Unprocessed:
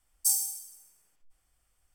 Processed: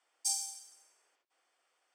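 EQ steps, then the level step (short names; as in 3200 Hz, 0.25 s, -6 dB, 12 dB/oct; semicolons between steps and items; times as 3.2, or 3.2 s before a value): HPF 380 Hz 24 dB/oct; air absorption 110 m; +5.0 dB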